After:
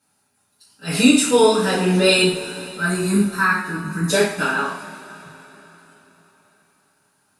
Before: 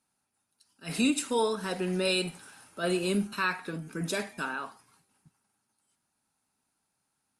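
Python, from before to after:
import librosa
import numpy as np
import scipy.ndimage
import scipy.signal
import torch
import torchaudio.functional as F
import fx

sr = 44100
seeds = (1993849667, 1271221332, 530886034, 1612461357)

y = fx.fixed_phaser(x, sr, hz=1300.0, stages=4, at=(2.22, 4.1))
y = fx.rev_double_slope(y, sr, seeds[0], early_s=0.44, late_s=4.3, knee_db=-21, drr_db=-8.0)
y = F.gain(torch.from_numpy(y), 5.0).numpy()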